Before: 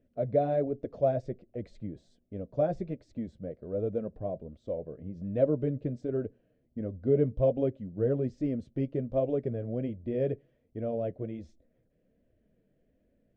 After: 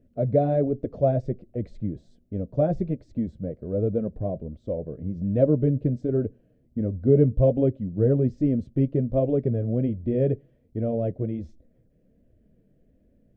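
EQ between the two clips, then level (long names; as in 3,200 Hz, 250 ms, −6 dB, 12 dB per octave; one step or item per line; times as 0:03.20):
low-shelf EQ 430 Hz +11.5 dB
0.0 dB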